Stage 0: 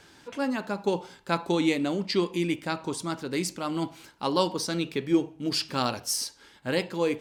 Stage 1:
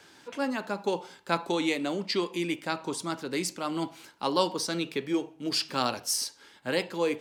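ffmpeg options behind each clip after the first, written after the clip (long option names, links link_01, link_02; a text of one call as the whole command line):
ffmpeg -i in.wav -filter_complex "[0:a]highpass=frequency=210:poles=1,acrossover=split=370|5600[link_01][link_02][link_03];[link_01]alimiter=level_in=4dB:limit=-24dB:level=0:latency=1:release=400,volume=-4dB[link_04];[link_04][link_02][link_03]amix=inputs=3:normalize=0" out.wav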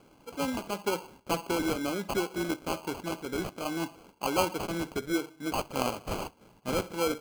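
ffmpeg -i in.wav -af "adynamicsmooth=sensitivity=6.5:basefreq=5300,acrusher=samples=24:mix=1:aa=0.000001,volume=-1.5dB" out.wav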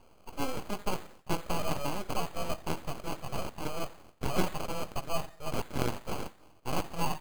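ffmpeg -i in.wav -af "aecho=1:1:88|176|264:0.0668|0.0287|0.0124,aeval=exprs='abs(val(0))':channel_layout=same,volume=1dB" out.wav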